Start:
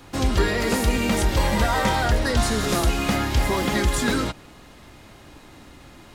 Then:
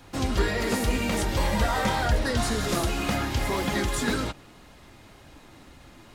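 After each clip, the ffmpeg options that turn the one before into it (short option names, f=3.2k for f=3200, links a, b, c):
-af "flanger=delay=1.2:depth=7.9:regen=-44:speed=1.9:shape=sinusoidal"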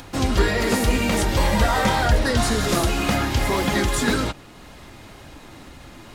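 -af "acompressor=mode=upward:threshold=-42dB:ratio=2.5,volume=5.5dB"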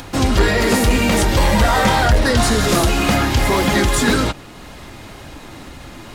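-af "asoftclip=type=tanh:threshold=-12.5dB,volume=6.5dB"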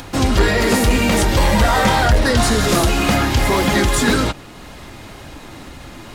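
-af anull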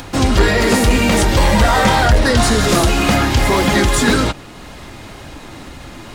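-af "equalizer=f=12k:w=5.5:g=-8,volume=2dB"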